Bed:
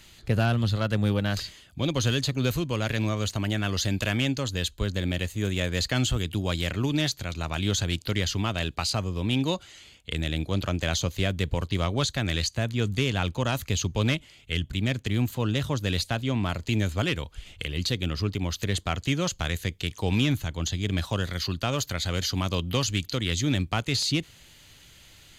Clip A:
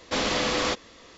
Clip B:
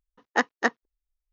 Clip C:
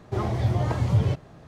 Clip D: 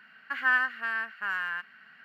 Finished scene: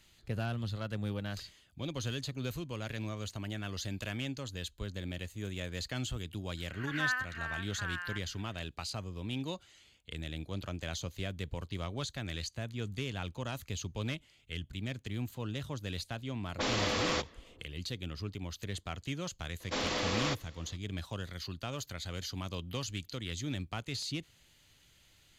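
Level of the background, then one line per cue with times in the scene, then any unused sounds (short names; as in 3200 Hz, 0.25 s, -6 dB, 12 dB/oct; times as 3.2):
bed -12 dB
6.57 add D -8.5 dB + backwards sustainer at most 110 dB/s
16.47 add A -6.5 dB + low-pass opened by the level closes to 330 Hz, open at -23.5 dBFS
19.6 add A -8 dB
not used: B, C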